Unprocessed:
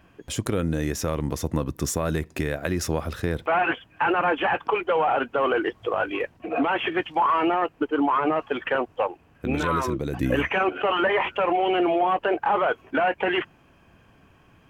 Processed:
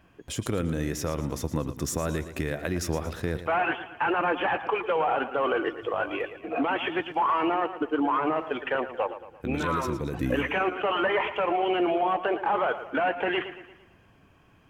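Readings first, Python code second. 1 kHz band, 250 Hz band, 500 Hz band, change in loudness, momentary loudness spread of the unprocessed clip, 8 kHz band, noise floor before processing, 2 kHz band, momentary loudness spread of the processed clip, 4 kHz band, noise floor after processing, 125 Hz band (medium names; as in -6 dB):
-3.0 dB, -3.0 dB, -3.0 dB, -3.0 dB, 6 LU, -3.0 dB, -57 dBFS, -3.0 dB, 6 LU, -3.0 dB, -58 dBFS, -3.0 dB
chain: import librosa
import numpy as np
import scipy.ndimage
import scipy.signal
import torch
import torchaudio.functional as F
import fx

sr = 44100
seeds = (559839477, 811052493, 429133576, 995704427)

y = fx.echo_warbled(x, sr, ms=114, feedback_pct=47, rate_hz=2.8, cents=70, wet_db=-12.0)
y = y * librosa.db_to_amplitude(-3.5)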